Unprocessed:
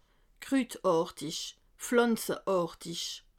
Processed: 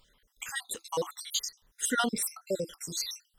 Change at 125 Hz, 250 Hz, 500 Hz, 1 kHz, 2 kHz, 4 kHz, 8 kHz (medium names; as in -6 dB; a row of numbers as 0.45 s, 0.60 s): -4.0 dB, -7.0 dB, -6.5 dB, -1.5 dB, +2.5 dB, +3.0 dB, +7.5 dB